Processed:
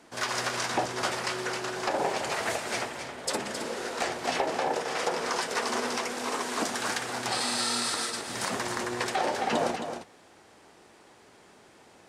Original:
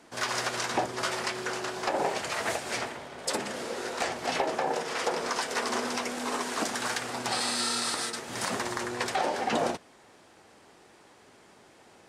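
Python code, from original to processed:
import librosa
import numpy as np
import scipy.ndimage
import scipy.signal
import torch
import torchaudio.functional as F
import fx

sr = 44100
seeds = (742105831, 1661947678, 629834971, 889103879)

y = x + 10.0 ** (-8.0 / 20.0) * np.pad(x, (int(267 * sr / 1000.0), 0))[:len(x)]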